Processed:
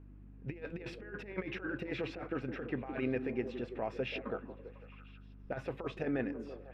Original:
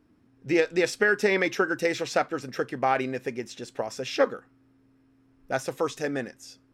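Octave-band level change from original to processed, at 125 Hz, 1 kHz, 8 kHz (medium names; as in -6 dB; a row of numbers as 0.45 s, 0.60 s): -3.5 dB, -17.0 dB, under -25 dB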